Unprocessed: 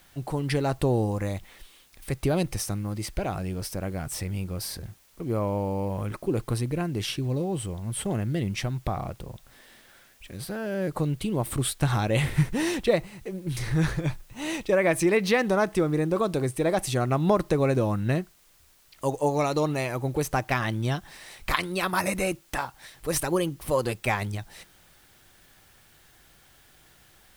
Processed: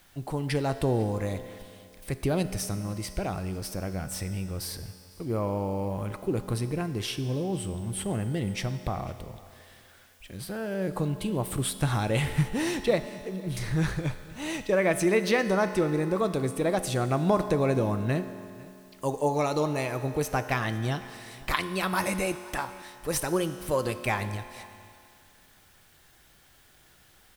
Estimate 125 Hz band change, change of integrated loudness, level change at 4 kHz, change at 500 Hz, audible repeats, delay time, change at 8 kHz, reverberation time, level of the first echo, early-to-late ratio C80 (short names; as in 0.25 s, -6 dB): -2.0 dB, -1.5 dB, -1.5 dB, -1.5 dB, 1, 0.501 s, -1.5 dB, 2.4 s, -23.0 dB, 11.5 dB